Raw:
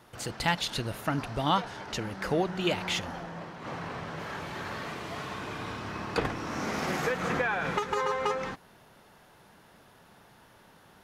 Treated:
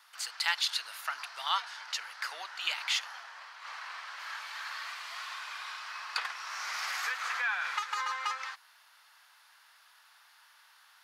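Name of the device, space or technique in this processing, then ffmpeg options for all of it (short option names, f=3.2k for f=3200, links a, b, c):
headphones lying on a table: -af "highpass=f=1.1k:w=0.5412,highpass=f=1.1k:w=1.3066,equalizer=f=4.6k:t=o:w=0.44:g=5.5"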